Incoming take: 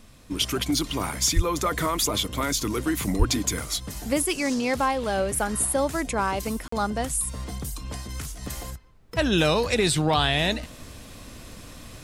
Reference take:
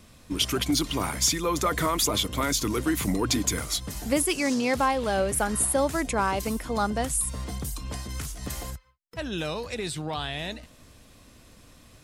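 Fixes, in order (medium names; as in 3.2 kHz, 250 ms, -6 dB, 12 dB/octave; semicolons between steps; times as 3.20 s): 1.35–1.47 s: high-pass 140 Hz 24 dB/octave; 3.18–3.30 s: high-pass 140 Hz 24 dB/octave; interpolate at 6.68 s, 44 ms; expander -35 dBFS, range -21 dB; 8.95 s: gain correction -10 dB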